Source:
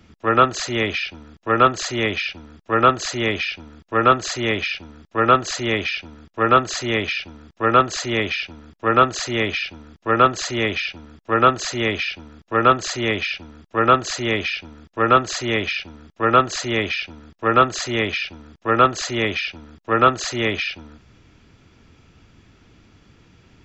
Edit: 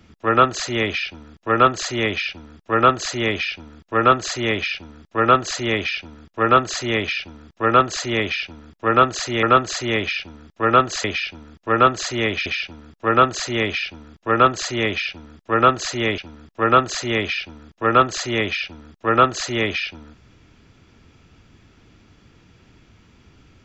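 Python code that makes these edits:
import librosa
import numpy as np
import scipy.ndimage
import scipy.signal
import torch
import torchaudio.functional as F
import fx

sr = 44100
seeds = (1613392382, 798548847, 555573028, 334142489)

y = fx.edit(x, sr, fx.duplicate(start_s=3.98, length_s=1.61, to_s=9.43),
    fx.cut(start_s=10.85, length_s=1.09),
    fx.cut(start_s=15.66, length_s=1.36), tone=tone)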